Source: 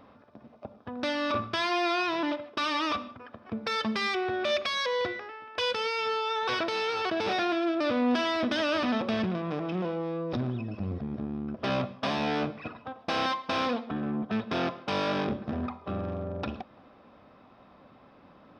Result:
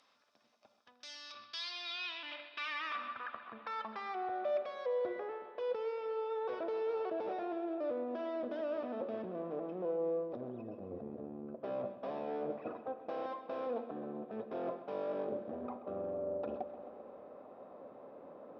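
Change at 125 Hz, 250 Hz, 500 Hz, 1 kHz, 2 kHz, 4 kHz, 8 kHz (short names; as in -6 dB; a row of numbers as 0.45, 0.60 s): -19.5 dB, -13.5 dB, -5.0 dB, -11.0 dB, -14.5 dB, -14.5 dB, under -15 dB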